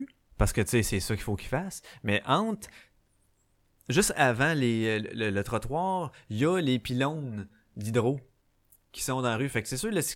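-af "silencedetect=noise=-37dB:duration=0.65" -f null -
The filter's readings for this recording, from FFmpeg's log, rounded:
silence_start: 2.69
silence_end: 3.81 | silence_duration: 1.12
silence_start: 8.18
silence_end: 8.94 | silence_duration: 0.76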